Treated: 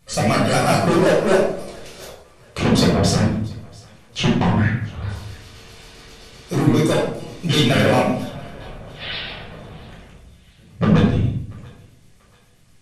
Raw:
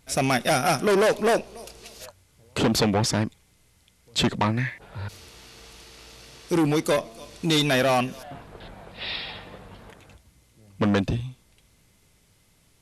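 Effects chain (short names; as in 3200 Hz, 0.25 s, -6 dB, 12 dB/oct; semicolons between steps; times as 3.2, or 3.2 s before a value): trilling pitch shifter -3.5 st, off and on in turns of 66 ms; thinning echo 0.687 s, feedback 47%, high-pass 640 Hz, level -23 dB; shoebox room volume 970 m³, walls furnished, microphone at 6 m; gain -2.5 dB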